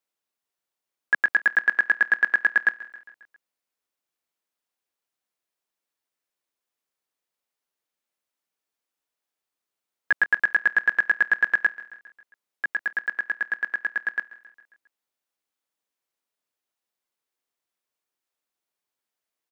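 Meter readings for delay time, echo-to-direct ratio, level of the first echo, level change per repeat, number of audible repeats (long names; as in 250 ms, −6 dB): 135 ms, −17.0 dB, −19.0 dB, −4.5 dB, 4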